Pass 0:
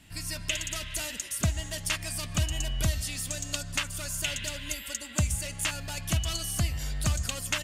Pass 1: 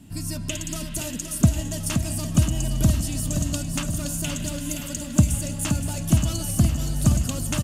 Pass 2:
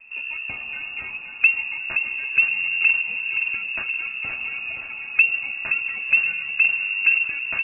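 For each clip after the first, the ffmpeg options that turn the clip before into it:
-af "equalizer=f=125:t=o:w=1:g=5,equalizer=f=250:t=o:w=1:g=11,equalizer=f=2k:t=o:w=1:g=-10,equalizer=f=4k:t=o:w=1:g=-5,aecho=1:1:521|1042|1563|2084|2605|3126|3647:0.447|0.25|0.14|0.0784|0.0439|0.0246|0.0138,volume=4dB"
-af "lowpass=f=2.4k:t=q:w=0.5098,lowpass=f=2.4k:t=q:w=0.6013,lowpass=f=2.4k:t=q:w=0.9,lowpass=f=2.4k:t=q:w=2.563,afreqshift=-2800"

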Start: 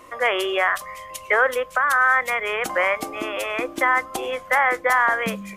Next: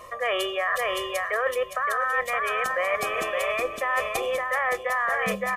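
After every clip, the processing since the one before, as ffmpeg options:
-af "aecho=1:1:1.7:0.86,aecho=1:1:567|1134|1701:0.501|0.12|0.0289,areverse,acompressor=threshold=-23dB:ratio=6,areverse"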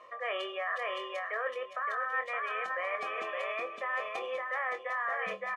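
-filter_complex "[0:a]highpass=220,lowpass=3.2k,lowshelf=f=310:g=-9,asplit=2[a][b];[b]adelay=23,volume=-8.5dB[c];[a][c]amix=inputs=2:normalize=0,volume=-8dB"

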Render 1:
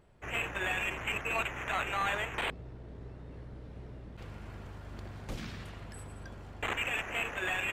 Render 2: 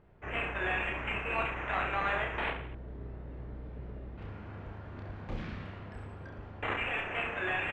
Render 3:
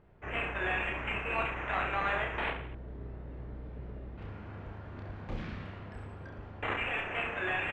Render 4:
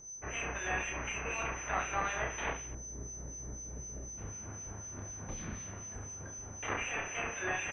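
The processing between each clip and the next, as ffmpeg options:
-filter_complex "[0:a]lowpass=2.4k,asplit=2[a][b];[b]aecho=0:1:30|67.5|114.4|173|246.2:0.631|0.398|0.251|0.158|0.1[c];[a][c]amix=inputs=2:normalize=0"
-af anull
-filter_complex "[0:a]aeval=exprs='val(0)+0.00794*sin(2*PI*6100*n/s)':c=same,acrossover=split=2400[a][b];[a]aeval=exprs='val(0)*(1-0.7/2+0.7/2*cos(2*PI*4*n/s))':c=same[c];[b]aeval=exprs='val(0)*(1-0.7/2-0.7/2*cos(2*PI*4*n/s))':c=same[d];[c][d]amix=inputs=2:normalize=0"

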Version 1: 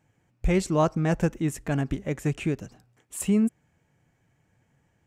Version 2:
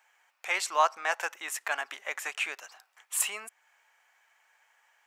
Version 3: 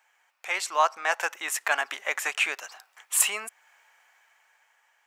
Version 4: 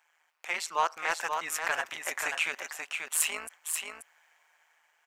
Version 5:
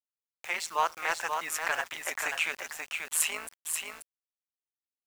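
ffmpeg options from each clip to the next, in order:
-filter_complex "[0:a]equalizer=f=8.1k:t=o:w=1.2:g=-4.5,asplit=2[a][b];[b]acompressor=threshold=-33dB:ratio=6,volume=-2dB[c];[a][c]amix=inputs=2:normalize=0,highpass=f=880:w=0.5412,highpass=f=880:w=1.3066,volume=5dB"
-af "dynaudnorm=f=210:g=11:m=7dB"
-filter_complex "[0:a]tremolo=f=160:d=0.889,asoftclip=type=tanh:threshold=-15dB,asplit=2[a][b];[b]aecho=0:1:534:0.531[c];[a][c]amix=inputs=2:normalize=0"
-af "acrusher=bits=7:mix=0:aa=0.000001"

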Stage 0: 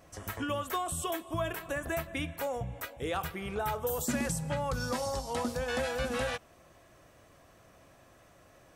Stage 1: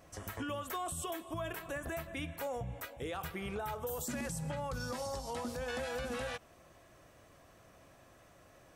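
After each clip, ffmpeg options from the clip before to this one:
-af "alimiter=level_in=5dB:limit=-24dB:level=0:latency=1:release=93,volume=-5dB,volume=-1.5dB"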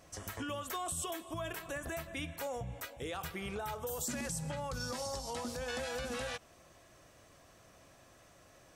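-af "equalizer=f=5.9k:t=o:w=1.8:g=6,volume=-1dB"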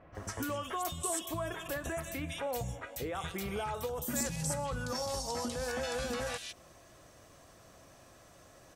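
-filter_complex "[0:a]acrossover=split=2400[a][b];[b]adelay=150[c];[a][c]amix=inputs=2:normalize=0,volume=3.5dB"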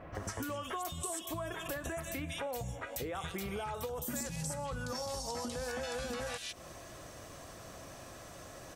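-af "acompressor=threshold=-46dB:ratio=4,volume=8dB"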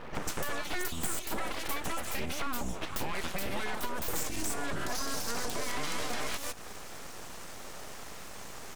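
-af "aeval=exprs='abs(val(0))':c=same,volume=7.5dB"

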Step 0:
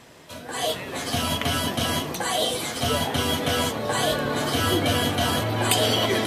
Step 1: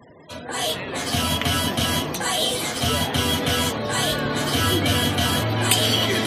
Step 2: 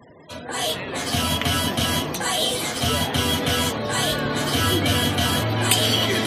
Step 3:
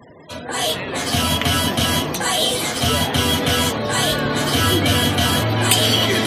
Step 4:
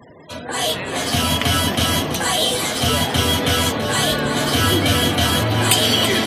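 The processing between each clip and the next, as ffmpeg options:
-filter_complex "[0:a]acrossover=split=310|1300[a][b][c];[b]alimiter=level_in=2.5dB:limit=-24dB:level=0:latency=1,volume=-2.5dB[d];[a][d][c]amix=inputs=3:normalize=0,afftfilt=real='re*gte(hypot(re,im),0.00631)':imag='im*gte(hypot(re,im),0.00631)':win_size=1024:overlap=0.75,volume=3.5dB"
-af anull
-af "acontrast=21,volume=-1dB"
-af "aecho=1:1:332:0.282"

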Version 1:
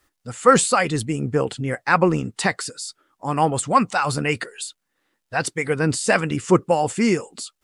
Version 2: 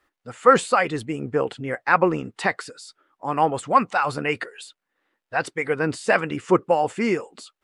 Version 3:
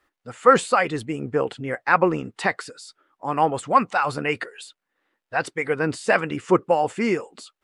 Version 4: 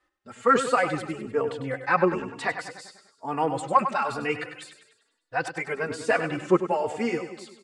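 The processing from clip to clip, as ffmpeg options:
-af "bass=f=250:g=-9,treble=f=4k:g=-13"
-af anull
-filter_complex "[0:a]asplit=2[a][b];[b]aecho=0:1:99|198|297|396|495|594:0.316|0.164|0.0855|0.0445|0.0231|0.012[c];[a][c]amix=inputs=2:normalize=0,aresample=22050,aresample=44100,asplit=2[d][e];[e]adelay=3.5,afreqshift=1.1[f];[d][f]amix=inputs=2:normalize=1,volume=-1.5dB"

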